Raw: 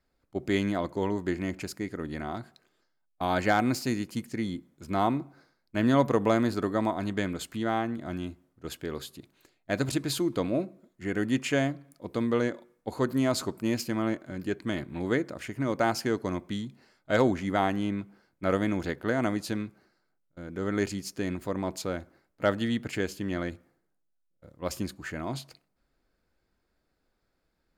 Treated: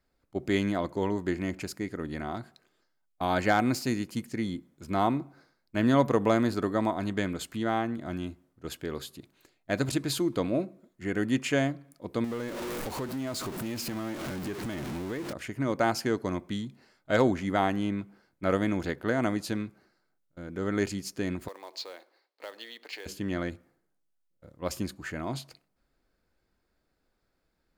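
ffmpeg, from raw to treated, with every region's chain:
-filter_complex "[0:a]asettb=1/sr,asplit=3[a][b][c];[a]atrim=end=12.244[d];[b]atrim=start=12.24:end=15.33,asetpts=PTS-STARTPTS,afade=t=in:d=0.004:c=qsin,afade=t=out:st=3.086:d=0.004:c=qsin,aeval=exprs='val(0)+0.5*0.0376*sgn(val(0))':c=same,acompressor=threshold=-34dB:ratio=3:attack=3.2:release=140:knee=1:detection=peak[e];[c]atrim=start=15.326[f];[d][e]acrossfade=d=0.004:c1=hsin:c2=qsin[g];[g][f]acrossfade=d=0.004:c1=qsin:c2=hsin,asettb=1/sr,asplit=3[h][i][j];[h]atrim=end=21.484[k];[i]atrim=start=21.48:end=23.06,asetpts=PTS-STARTPTS,afade=t=in:d=0.004:c=qsin,afade=t=out:st=1.576:d=0.004:c=qsin,acompressor=threshold=-33dB:ratio=4:attack=3.2:release=140:knee=1:detection=peak,highpass=f=470:w=0.5412,highpass=f=470:w=1.3066,equalizer=f=630:t=q:w=4:g=-6,equalizer=f=1.4k:t=q:w=4:g=-8,equalizer=f=4.3k:t=q:w=4:g=9,lowpass=f=5.4k:w=0.5412,lowpass=f=5.4k:w=1.3066,acrusher=bits=4:mode=log:mix=0:aa=0.000001[l];[j]atrim=start=23.056[m];[k][l]acrossfade=d=0.004:c1=hsin:c2=qsin[n];[n][m]acrossfade=d=0.004:c1=qsin:c2=hsin"

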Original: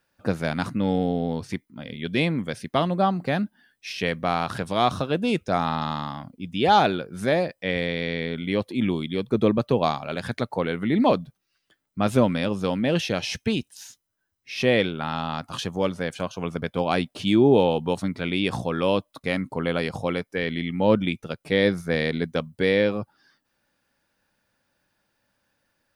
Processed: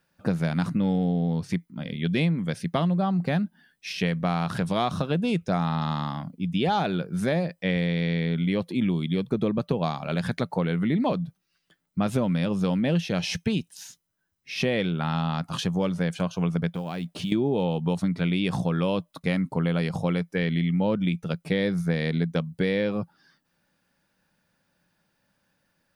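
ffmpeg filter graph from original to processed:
-filter_complex "[0:a]asettb=1/sr,asplit=3[a][b][c];[a]atrim=end=16.744[d];[b]atrim=start=16.74:end=17.32,asetpts=PTS-STARTPTS,afade=t=in:d=0.004:c=qsin,afade=t=out:st=0.576:d=0.004:c=qsin,acompressor=threshold=-31dB:ratio=6:attack=3.2:release=140:knee=1:detection=peak,acrusher=bits=7:mode=log:mix=0:aa=0.000001[e];[c]atrim=start=17.316[f];[d][e]acrossfade=d=0.004:c1=hsin:c2=qsin[g];[g][f]acrossfade=d=0.004:c1=qsin:c2=hsin,equalizer=f=170:t=o:w=0.4:g=11.5,acompressor=threshold=-21dB:ratio=6"

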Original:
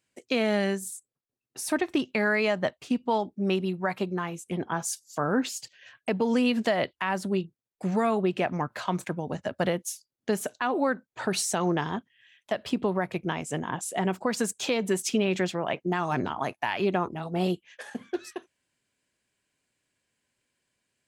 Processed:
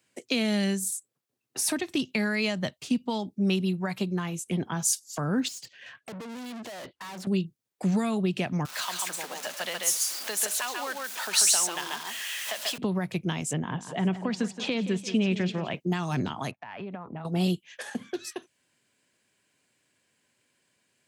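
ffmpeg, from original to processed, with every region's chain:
-filter_complex "[0:a]asettb=1/sr,asplit=3[a][b][c];[a]atrim=end=5.484[d];[b]atrim=start=5.48:end=7.27,asetpts=PTS-STARTPTS,afade=t=in:d=0.004:c=qsin,afade=t=out:st=1.786:d=0.004:c=qsin,highshelf=f=7.5k:g=-11,aeval=exprs='(tanh(158*val(0)+0.25)-tanh(0.25))/158':c=same[e];[c]atrim=start=7.266[f];[d][e]acrossfade=d=0.004:c1=hsin:c2=qsin[g];[g][f]acrossfade=d=0.004:c1=qsin:c2=hsin,asettb=1/sr,asplit=3[h][i][j];[h]atrim=end=8.654[k];[i]atrim=start=8.65:end=12.78,asetpts=PTS-STARTPTS,afade=t=in:d=0.004:c=qsin,afade=t=out:st=4.126:d=0.004:c=qsin,aeval=exprs='val(0)+0.5*0.0178*sgn(val(0))':c=same,highpass=850,aecho=1:1:139:0.668,atrim=end_sample=182133[l];[j]atrim=start=12.776[m];[k][l]acrossfade=d=0.004:c1=hsin:c2=qsin[n];[n][m]acrossfade=d=0.004:c1=qsin:c2=hsin,asettb=1/sr,asplit=3[o][p][q];[o]atrim=end=13.534[r];[p]atrim=start=13.53:end=15.75,asetpts=PTS-STARTPTS,afade=t=in:d=0.004:c=qsin,afade=t=out:st=2.216:d=0.004:c=qsin,lowpass=2.9k,aecho=1:1:172|344|516|688|860:0.2|0.0958|0.046|0.0221|0.0106,atrim=end_sample=97902[s];[q]atrim=start=15.746[t];[r][s]acrossfade=d=0.004:c1=hsin:c2=qsin[u];[u][t]acrossfade=d=0.004:c1=qsin:c2=hsin,asettb=1/sr,asplit=3[v][w][x];[v]atrim=end=16.514[y];[w]atrim=start=16.51:end=17.25,asetpts=PTS-STARTPTS,afade=t=in:d=0.004:c=qsin,afade=t=out:st=0.736:d=0.004:c=qsin,lowpass=1.9k,equalizer=f=350:w=3.9:g=-9.5,acompressor=threshold=-38dB:ratio=10:attack=3.2:release=140:knee=1:detection=peak[z];[x]atrim=start=17.246[aa];[y][z]acrossfade=d=0.004:c1=hsin:c2=qsin[ab];[ab][aa]acrossfade=d=0.004:c1=qsin:c2=hsin,highpass=110,acrossover=split=210|3000[ac][ad][ae];[ad]acompressor=threshold=-46dB:ratio=2.5[af];[ac][af][ae]amix=inputs=3:normalize=0,volume=7dB"

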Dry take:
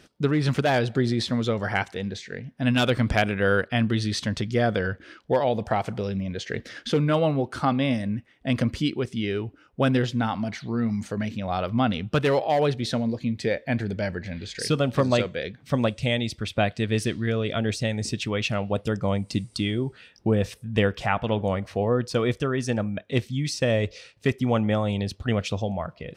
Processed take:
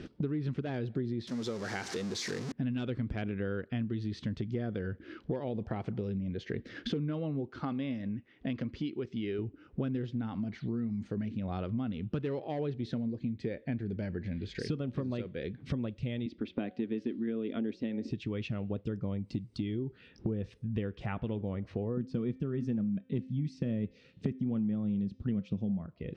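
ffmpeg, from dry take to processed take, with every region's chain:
-filter_complex "[0:a]asettb=1/sr,asplit=3[a][b][c];[a]atrim=end=1.274[d];[b]atrim=start=1.27:end=2.52,asetpts=PTS-STARTPTS,afade=t=in:d=0.004:c=qsin,afade=t=out:st=1.246:d=0.004:c=qsin,aeval=exprs='val(0)+0.5*0.0501*sgn(val(0))':c=same,highpass=f=610:p=1,highshelf=f=4.1k:t=q:w=1.5:g=10[e];[c]atrim=start=2.516[f];[d][e]acrossfade=d=0.004:c1=hsin:c2=qsin[g];[g][f]acrossfade=d=0.004:c1=qsin:c2=hsin,asettb=1/sr,asplit=3[h][i][j];[h]atrim=end=7.504[k];[i]atrim=start=7.5:end=9.39,asetpts=PTS-STARTPTS,afade=t=in:d=0.004:c=qsin,afade=t=out:st=1.886:d=0.004:c=qsin,lowpass=f=6.7k:w=0.5412,lowpass=f=6.7k:w=1.3066,lowshelf=f=320:g=-9.5[l];[j]atrim=start=9.386[m];[k][l]acrossfade=d=0.004:c1=hsin:c2=qsin[n];[n][m]acrossfade=d=0.004:c1=qsin:c2=hsin,asettb=1/sr,asplit=3[o][p][q];[o]atrim=end=16.264[r];[p]atrim=start=16.26:end=18.11,asetpts=PTS-STARTPTS,afade=t=in:d=0.004:c=qsin,afade=t=out:st=1.846:d=0.004:c=qsin,lowpass=4.6k,lowshelf=f=180:t=q:w=3:g=-11,bandreject=f=183.9:t=h:w=4,bandreject=f=367.8:t=h:w=4,bandreject=f=551.7:t=h:w=4,bandreject=f=735.6:t=h:w=4,bandreject=f=919.5:t=h:w=4[s];[q]atrim=start=18.106[t];[r][s]acrossfade=d=0.004:c1=hsin:c2=qsin[u];[u][t]acrossfade=d=0.004:c1=qsin:c2=hsin,asettb=1/sr,asplit=3[v][w][x];[v]atrim=end=21.974[y];[w]atrim=start=21.97:end=25.86,asetpts=PTS-STARTPTS,afade=t=in:d=0.004:c=qsin,afade=t=out:st=3.886:d=0.004:c=qsin,equalizer=f=190:w=1.7:g=15,bandreject=f=260.1:t=h:w=4,bandreject=f=520.2:t=h:w=4,bandreject=f=780.3:t=h:w=4,bandreject=f=1.0404k:t=h:w=4,bandreject=f=1.3005k:t=h:w=4,bandreject=f=1.5606k:t=h:w=4,bandreject=f=1.8207k:t=h:w=4,bandreject=f=2.0808k:t=h:w=4,bandreject=f=2.3409k:t=h:w=4,bandreject=f=2.601k:t=h:w=4,bandreject=f=2.8611k:t=h:w=4,bandreject=f=3.1212k:t=h:w=4,bandreject=f=3.3813k:t=h:w=4,bandreject=f=3.6414k:t=h:w=4,bandreject=f=3.9015k:t=h:w=4,bandreject=f=4.1616k:t=h:w=4,bandreject=f=4.4217k:t=h:w=4,bandreject=f=4.6818k:t=h:w=4,bandreject=f=4.9419k:t=h:w=4,bandreject=f=5.202k:t=h:w=4,bandreject=f=5.4621k:t=h:w=4,bandreject=f=5.7222k:t=h:w=4,bandreject=f=5.9823k:t=h:w=4,bandreject=f=6.2424k:t=h:w=4,bandreject=f=6.5025k:t=h:w=4,bandreject=f=6.7626k:t=h:w=4,bandreject=f=7.0227k:t=h:w=4,bandreject=f=7.2828k:t=h:w=4[z];[x]atrim=start=25.856[aa];[y][z]acrossfade=d=0.004:c1=hsin:c2=qsin[ab];[ab][aa]acrossfade=d=0.004:c1=qsin:c2=hsin,lowpass=3.8k,lowshelf=f=490:t=q:w=1.5:g=8.5,acompressor=threshold=-38dB:ratio=5,volume=3dB"

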